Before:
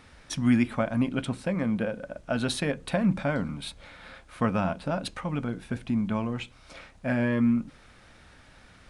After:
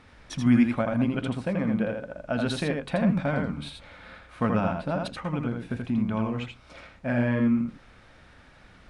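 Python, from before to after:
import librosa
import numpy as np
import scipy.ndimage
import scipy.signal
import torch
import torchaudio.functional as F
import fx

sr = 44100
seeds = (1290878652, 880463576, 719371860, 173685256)

y = fx.lowpass(x, sr, hz=3400.0, slope=6)
y = y + 10.0 ** (-4.0 / 20.0) * np.pad(y, (int(82 * sr / 1000.0), 0))[:len(y)]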